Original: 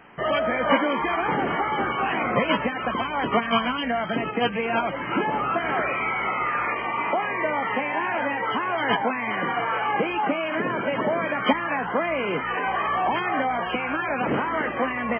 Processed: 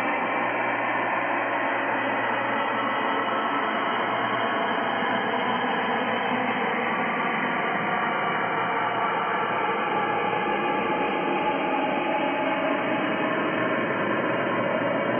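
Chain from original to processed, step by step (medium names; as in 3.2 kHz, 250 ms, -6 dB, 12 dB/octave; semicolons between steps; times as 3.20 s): Paulstretch 4.9×, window 1.00 s, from 7.85 s; gain riding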